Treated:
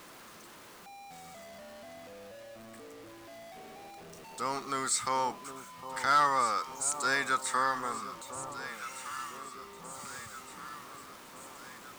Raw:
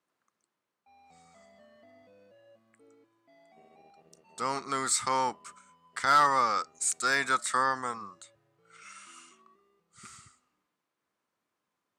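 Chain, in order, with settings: zero-crossing step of -42 dBFS; echo with dull and thin repeats by turns 0.758 s, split 1000 Hz, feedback 73%, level -10 dB; gain -3 dB

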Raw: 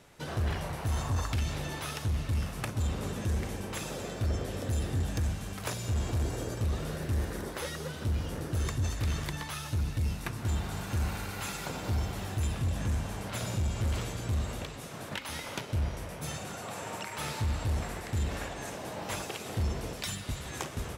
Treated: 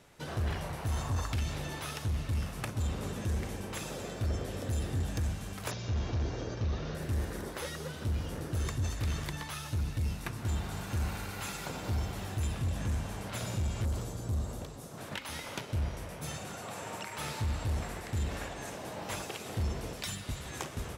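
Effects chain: 5.71–6.95 steep low-pass 6400 Hz 72 dB/oct; 13.85–14.98 bell 2400 Hz -11 dB 1.6 oct; gain -2 dB

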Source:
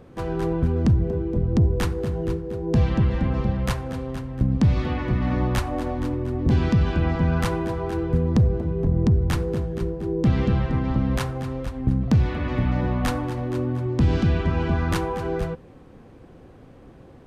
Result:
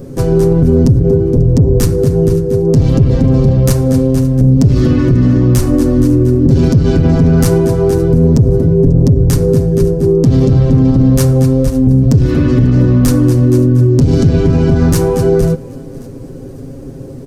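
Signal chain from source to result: high shelf 7500 Hz +7 dB; soft clip -17 dBFS, distortion -14 dB; band shelf 1600 Hz -13 dB 2.8 oct; comb 7.4 ms, depth 69%; thinning echo 0.542 s, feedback 39%, level -22.5 dB; maximiser +18.5 dB; gain -1 dB

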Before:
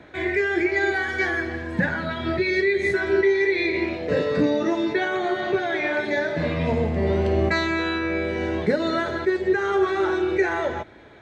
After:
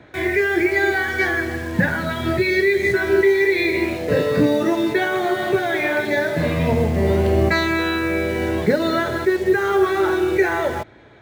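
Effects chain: bell 120 Hz +6 dB 0.45 oct; in parallel at -5.5 dB: bit-crush 6-bit

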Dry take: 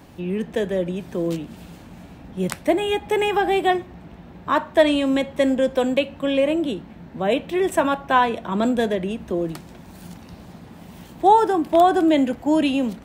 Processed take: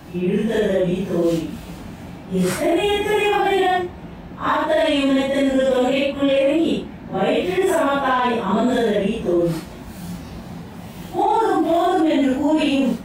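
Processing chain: phase scrambler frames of 0.2 s; in parallel at -10 dB: soft clip -19 dBFS, distortion -10 dB; on the sum: limiter -15 dBFS, peak gain reduction 11.5 dB; gain +4.5 dB

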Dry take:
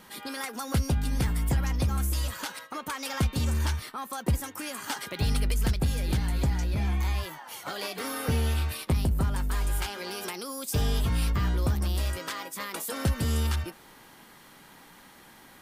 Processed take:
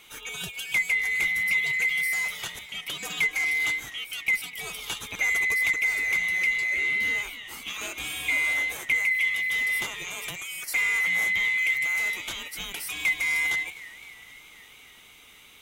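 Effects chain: band-swap scrambler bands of 2000 Hz; added harmonics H 8 -38 dB, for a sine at -13.5 dBFS; warbling echo 0.255 s, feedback 68%, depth 145 cents, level -19 dB

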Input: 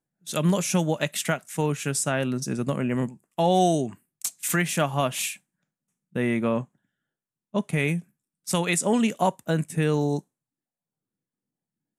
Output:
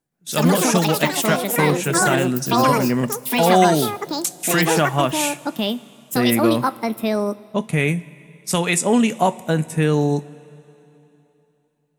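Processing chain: two-slope reverb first 0.21 s, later 3.2 s, from -18 dB, DRR 12.5 dB; echoes that change speed 0.121 s, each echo +6 st, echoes 3; gain +5 dB

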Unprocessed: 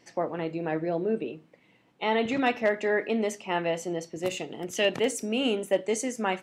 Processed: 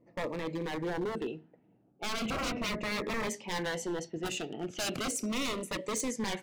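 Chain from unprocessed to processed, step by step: low-pass opened by the level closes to 590 Hz, open at -26 dBFS; 2.3–3.27 tilt -4.5 dB/oct; wavefolder -26.5 dBFS; cascading phaser falling 0.36 Hz

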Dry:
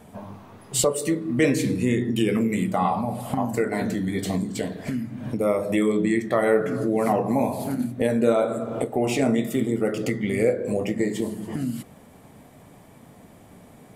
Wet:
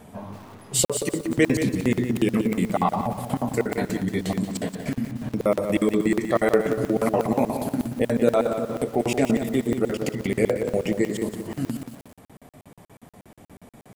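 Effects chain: 4.55–5.29 doubler 48 ms -9.5 dB; crackling interface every 0.12 s, samples 2048, zero, from 0.85; lo-fi delay 0.18 s, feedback 35%, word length 7-bit, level -9 dB; gain +1.5 dB

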